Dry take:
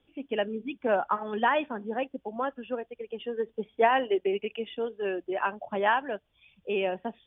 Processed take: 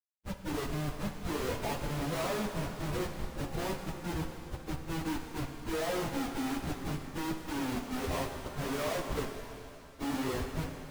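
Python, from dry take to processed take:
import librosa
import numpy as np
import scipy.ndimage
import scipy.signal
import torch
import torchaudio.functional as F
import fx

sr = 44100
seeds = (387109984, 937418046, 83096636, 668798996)

y = fx.pitch_bins(x, sr, semitones=-6.5)
y = fx.schmitt(y, sr, flips_db=-33.5)
y = fx.stretch_vocoder_free(y, sr, factor=1.5)
y = fx.rev_shimmer(y, sr, seeds[0], rt60_s=2.5, semitones=7, shimmer_db=-8, drr_db=5.0)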